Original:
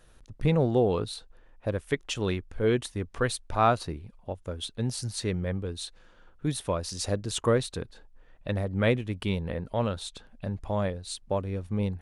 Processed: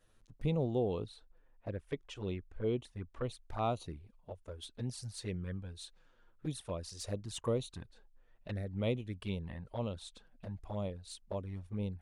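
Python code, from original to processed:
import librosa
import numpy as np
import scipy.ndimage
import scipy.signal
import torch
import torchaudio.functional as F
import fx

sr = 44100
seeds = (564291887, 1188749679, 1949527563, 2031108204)

y = fx.high_shelf(x, sr, hz=4200.0, db=-11.5, at=(1.06, 3.42))
y = fx.env_flanger(y, sr, rest_ms=10.5, full_db=-23.5)
y = F.gain(torch.from_numpy(y), -8.5).numpy()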